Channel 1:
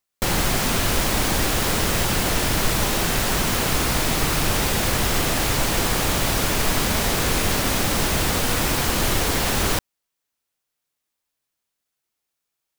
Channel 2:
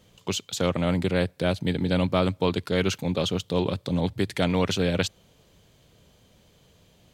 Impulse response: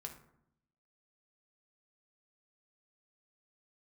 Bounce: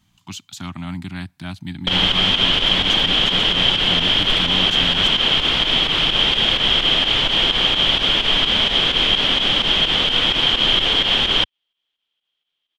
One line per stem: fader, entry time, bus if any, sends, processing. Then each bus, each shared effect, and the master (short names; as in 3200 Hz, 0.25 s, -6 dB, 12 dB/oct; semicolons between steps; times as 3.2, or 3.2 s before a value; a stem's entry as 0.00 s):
-1.0 dB, 1.65 s, no send, bell 74 Hz -8.5 dB 1.4 oct; pump 128 bpm, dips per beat 2, -10 dB, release 86 ms; synth low-pass 3200 Hz, resonance Q 15
-3.0 dB, 0.00 s, no send, Chebyshev band-stop 270–850 Hz, order 2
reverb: off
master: dry